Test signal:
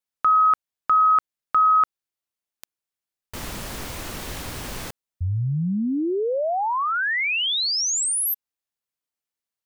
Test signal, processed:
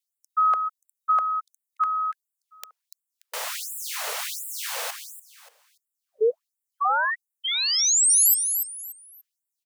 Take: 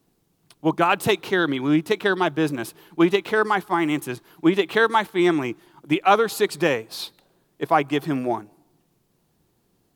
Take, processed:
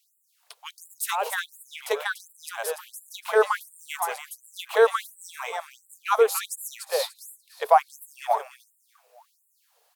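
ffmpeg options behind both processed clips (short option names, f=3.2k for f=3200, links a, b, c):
-filter_complex "[0:a]acrossover=split=280|940|6500[a][b][c][d];[c]acompressor=threshold=-32dB:ratio=6:attack=1.7:release=586:detection=rms[e];[a][b][e][d]amix=inputs=4:normalize=0,aecho=1:1:290|580|870:0.447|0.112|0.0279,afftfilt=real='re*gte(b*sr/1024,410*pow(7300/410,0.5+0.5*sin(2*PI*1.4*pts/sr)))':imag='im*gte(b*sr/1024,410*pow(7300/410,0.5+0.5*sin(2*PI*1.4*pts/sr)))':win_size=1024:overlap=0.75,volume=5.5dB"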